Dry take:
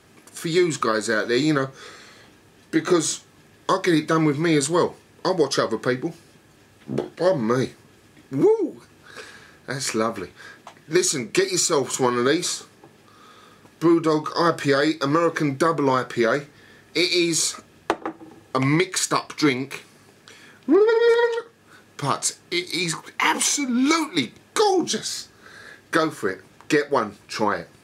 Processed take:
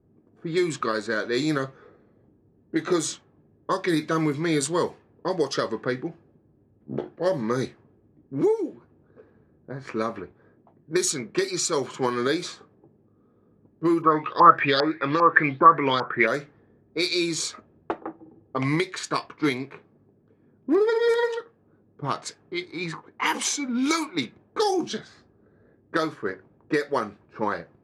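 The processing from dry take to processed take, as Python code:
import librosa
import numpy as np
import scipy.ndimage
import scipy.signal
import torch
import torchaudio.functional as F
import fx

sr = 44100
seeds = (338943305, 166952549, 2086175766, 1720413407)

y = fx.env_lowpass(x, sr, base_hz=350.0, full_db=-15.0)
y = fx.high_shelf(y, sr, hz=11000.0, db=9.0)
y = fx.filter_lfo_lowpass(y, sr, shape='saw_up', hz=2.5, low_hz=880.0, high_hz=4400.0, q=8.0, at=(14.01, 16.26), fade=0.02)
y = y * 10.0 ** (-4.5 / 20.0)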